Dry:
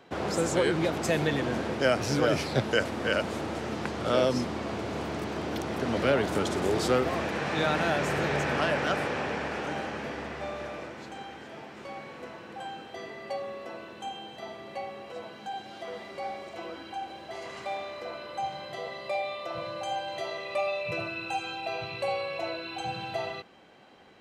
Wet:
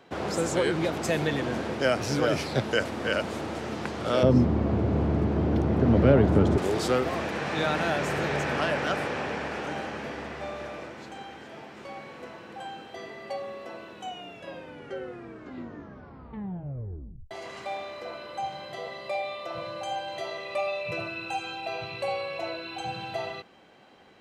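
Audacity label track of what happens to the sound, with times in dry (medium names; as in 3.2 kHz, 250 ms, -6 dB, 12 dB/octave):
4.230000	6.580000	tilt EQ -4.5 dB/octave
13.890000	13.890000	tape stop 3.42 s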